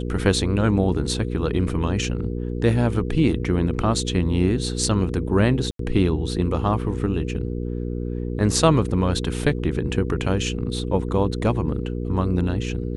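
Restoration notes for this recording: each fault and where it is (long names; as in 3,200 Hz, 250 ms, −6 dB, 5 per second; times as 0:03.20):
mains hum 60 Hz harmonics 8 −27 dBFS
0:05.71–0:05.79: drop-out 83 ms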